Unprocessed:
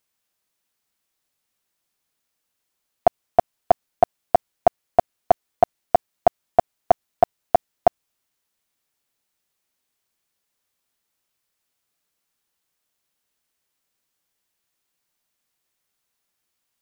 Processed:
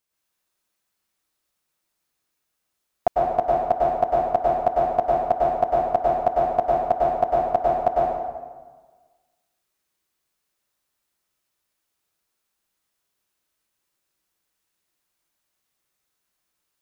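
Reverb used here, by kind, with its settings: plate-style reverb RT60 1.4 s, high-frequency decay 0.65×, pre-delay 90 ms, DRR -5 dB; trim -5.5 dB

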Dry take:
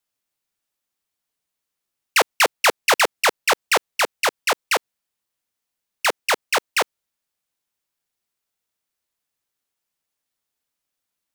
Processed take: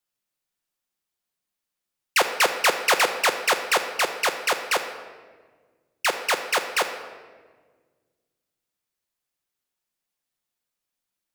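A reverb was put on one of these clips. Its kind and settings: simulated room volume 1500 m³, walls mixed, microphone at 0.93 m; trim -3.5 dB

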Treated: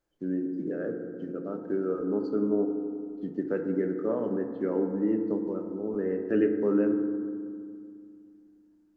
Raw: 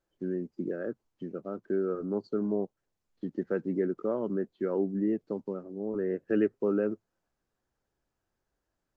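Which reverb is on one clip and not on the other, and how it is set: FDN reverb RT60 2.2 s, low-frequency decay 1.4×, high-frequency decay 0.25×, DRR 4 dB

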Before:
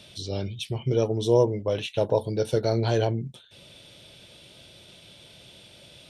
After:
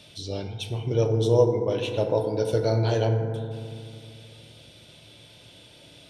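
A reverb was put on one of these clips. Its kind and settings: FDN reverb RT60 2.3 s, low-frequency decay 1.3×, high-frequency decay 0.3×, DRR 4 dB; trim -1.5 dB

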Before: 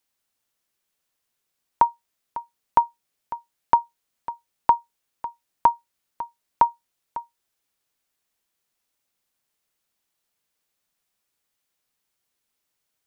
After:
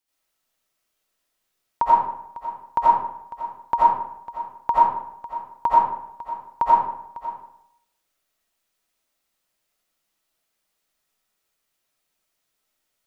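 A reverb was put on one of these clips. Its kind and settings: algorithmic reverb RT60 0.76 s, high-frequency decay 0.65×, pre-delay 45 ms, DRR -9 dB; trim -5.5 dB

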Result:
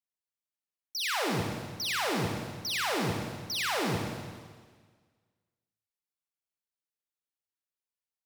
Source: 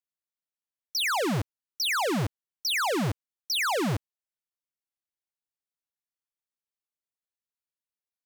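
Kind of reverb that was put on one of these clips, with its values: Schroeder reverb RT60 1.6 s, DRR -0.5 dB; trim -6.5 dB

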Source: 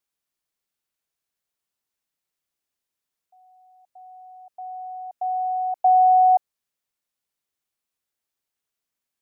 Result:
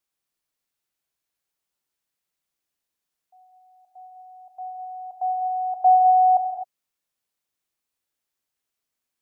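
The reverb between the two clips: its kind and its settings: gated-style reverb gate 280 ms flat, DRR 5 dB

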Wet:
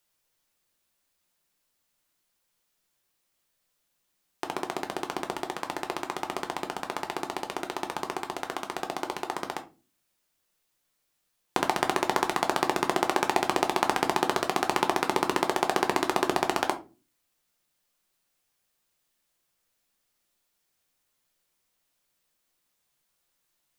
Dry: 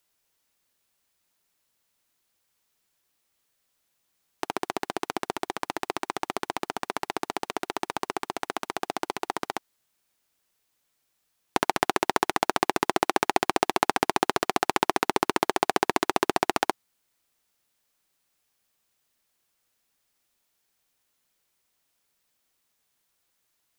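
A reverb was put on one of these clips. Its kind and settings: simulated room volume 140 m³, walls furnished, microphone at 0.89 m; trim -2.5 dB

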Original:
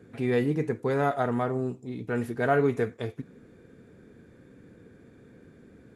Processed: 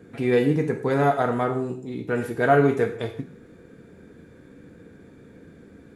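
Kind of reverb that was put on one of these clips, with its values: gated-style reverb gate 190 ms falling, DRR 5 dB; trim +4 dB

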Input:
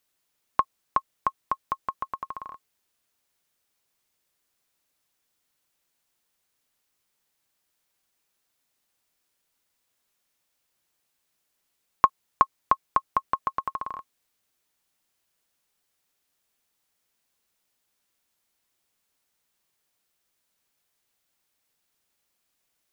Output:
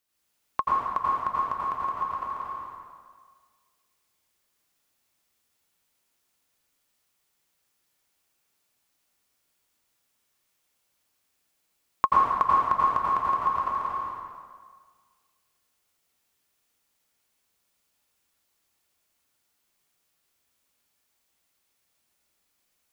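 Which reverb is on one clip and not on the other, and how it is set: plate-style reverb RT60 1.7 s, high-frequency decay 0.85×, pre-delay 75 ms, DRR -6.5 dB; trim -5 dB

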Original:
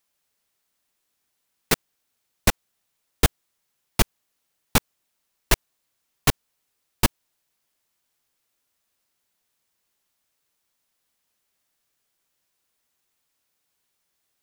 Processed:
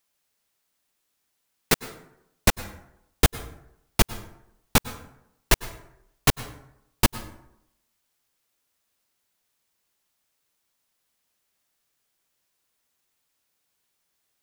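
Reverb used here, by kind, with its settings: plate-style reverb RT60 0.81 s, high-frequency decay 0.55×, pre-delay 90 ms, DRR 15 dB

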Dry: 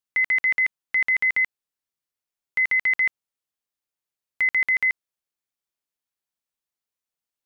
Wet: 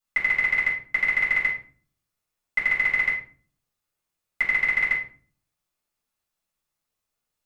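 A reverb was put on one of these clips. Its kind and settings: simulated room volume 350 m³, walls furnished, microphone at 6.9 m; trim -3.5 dB

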